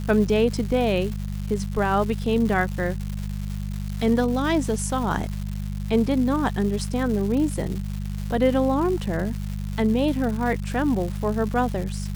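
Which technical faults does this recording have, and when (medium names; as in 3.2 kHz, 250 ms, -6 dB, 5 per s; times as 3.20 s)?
crackle 320 per s -30 dBFS
hum 50 Hz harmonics 4 -29 dBFS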